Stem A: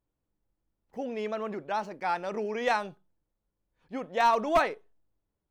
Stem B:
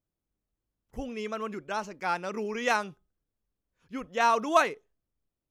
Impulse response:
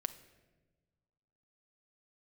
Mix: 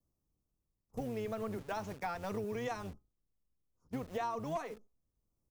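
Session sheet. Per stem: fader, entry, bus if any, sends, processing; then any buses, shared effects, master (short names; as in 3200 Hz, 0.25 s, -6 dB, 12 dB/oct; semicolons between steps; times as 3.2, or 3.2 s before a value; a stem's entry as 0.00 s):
-2.0 dB, 0.00 s, no send, level-crossing sampler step -45.5 dBFS; gate -46 dBFS, range -24 dB; compressor, threshold -27 dBFS, peak gain reduction 8.5 dB
+2.5 dB, 4 ms, no send, octaver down 1 oct, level +3 dB; elliptic band-stop 1200–5200 Hz; auto duck -9 dB, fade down 0.90 s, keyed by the first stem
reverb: off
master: compressor 6:1, threshold -35 dBFS, peak gain reduction 13 dB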